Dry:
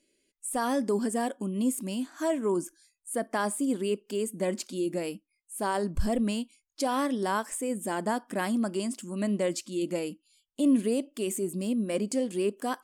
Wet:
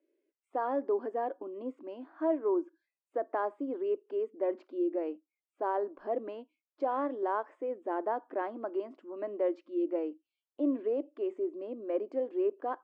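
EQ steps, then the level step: elliptic high-pass 310 Hz, stop band 50 dB; low-pass 1.1 kHz 12 dB/octave; distance through air 140 m; 0.0 dB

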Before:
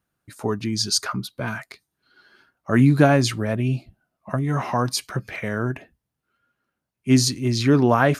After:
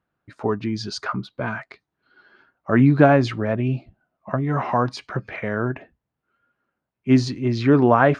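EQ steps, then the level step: tape spacing loss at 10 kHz 35 dB; bass shelf 320 Hz -8.5 dB; +7.0 dB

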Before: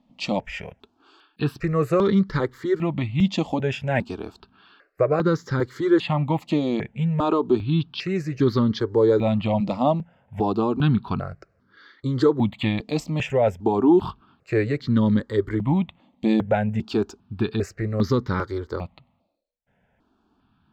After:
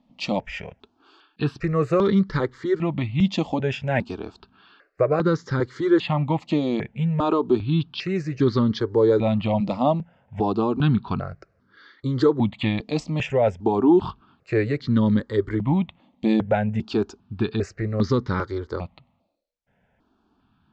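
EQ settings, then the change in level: low-pass 7 kHz 24 dB/octave; 0.0 dB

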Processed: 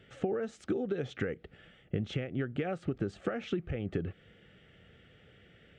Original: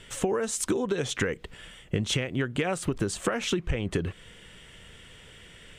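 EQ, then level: high-pass 79 Hz; Butterworth band-stop 1 kHz, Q 3.4; tape spacing loss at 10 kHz 33 dB; -4.0 dB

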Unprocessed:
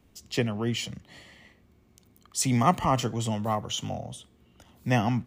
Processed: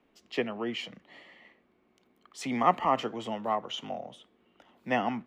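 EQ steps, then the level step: three-band isolator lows -13 dB, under 200 Hz, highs -20 dB, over 3.4 kHz; peaking EQ 89 Hz -12.5 dB 1.7 oct; 0.0 dB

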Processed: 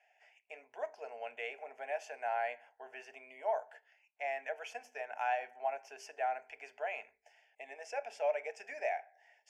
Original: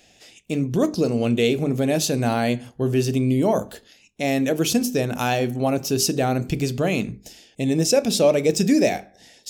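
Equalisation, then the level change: elliptic high-pass 530 Hz, stop band 40 dB; low-pass 2.3 kHz 12 dB/octave; static phaser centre 790 Hz, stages 8; -7.0 dB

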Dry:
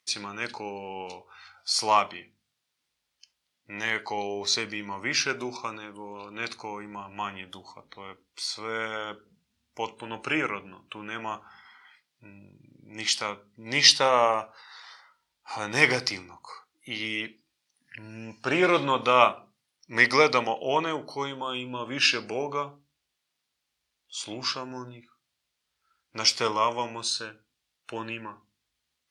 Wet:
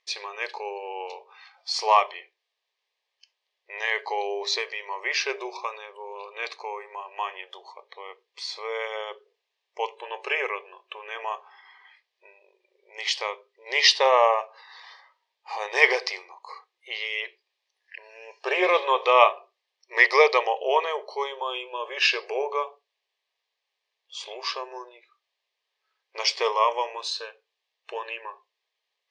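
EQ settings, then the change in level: brick-wall FIR high-pass 370 Hz; Butterworth band-stop 1.4 kHz, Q 4.1; distance through air 150 m; +4.0 dB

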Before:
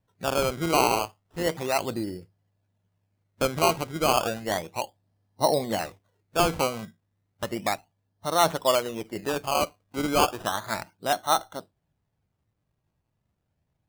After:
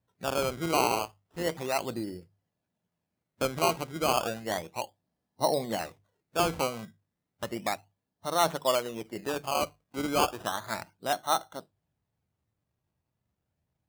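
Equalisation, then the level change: high-pass 42 Hz; hum notches 50/100/150 Hz; -4.0 dB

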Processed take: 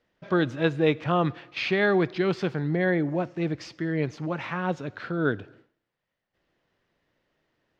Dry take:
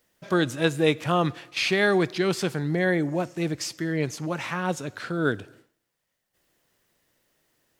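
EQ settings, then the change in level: distance through air 230 m; 0.0 dB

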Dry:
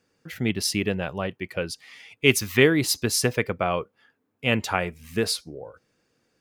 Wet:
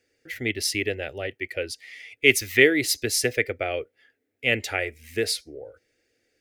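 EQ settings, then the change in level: peaking EQ 2 kHz +10 dB 0.51 oct; static phaser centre 430 Hz, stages 4; 0.0 dB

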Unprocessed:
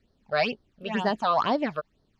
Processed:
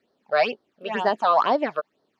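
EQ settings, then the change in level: high-pass 400 Hz 12 dB/octave; treble shelf 2.1 kHz -8.5 dB; +6.5 dB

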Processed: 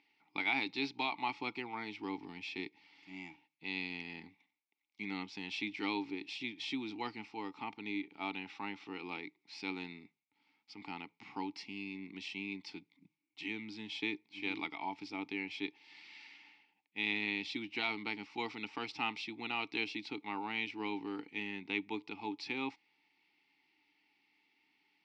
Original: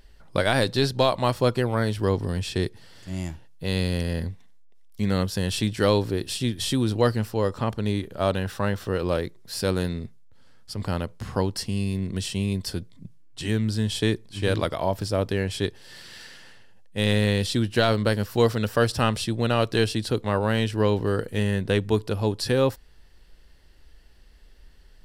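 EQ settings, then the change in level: vowel filter u; cabinet simulation 210–5200 Hz, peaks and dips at 240 Hz -6 dB, 340 Hz -8 dB, 530 Hz -9 dB, 1 kHz -9 dB, 3.1 kHz -5 dB, 4.4 kHz -4 dB; tilt shelf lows -8.5 dB, about 1.1 kHz; +8.0 dB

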